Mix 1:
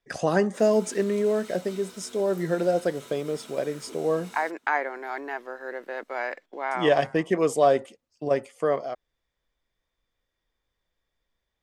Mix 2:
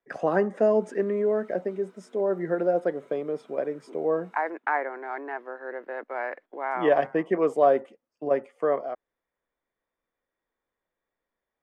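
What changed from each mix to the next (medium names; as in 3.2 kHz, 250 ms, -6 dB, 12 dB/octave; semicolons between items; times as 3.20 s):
background -8.5 dB; master: add three-band isolator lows -16 dB, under 190 Hz, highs -20 dB, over 2.2 kHz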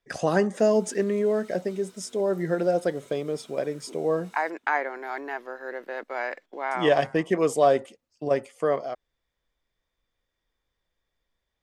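master: remove three-band isolator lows -16 dB, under 190 Hz, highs -20 dB, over 2.2 kHz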